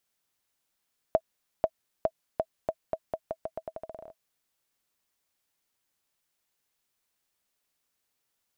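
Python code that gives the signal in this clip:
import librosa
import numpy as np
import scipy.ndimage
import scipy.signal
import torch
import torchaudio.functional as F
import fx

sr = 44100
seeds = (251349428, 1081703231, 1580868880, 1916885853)

y = fx.bouncing_ball(sr, first_gap_s=0.49, ratio=0.84, hz=645.0, decay_ms=56.0, level_db=-10.5)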